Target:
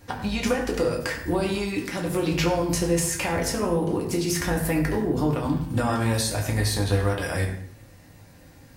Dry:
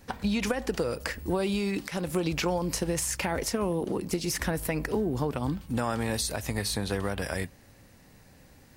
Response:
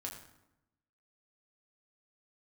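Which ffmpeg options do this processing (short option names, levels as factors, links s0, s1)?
-filter_complex "[1:a]atrim=start_sample=2205,afade=t=out:st=0.36:d=0.01,atrim=end_sample=16317,asetrate=48510,aresample=44100[s0];[0:a][s0]afir=irnorm=-1:irlink=0,volume=2.24"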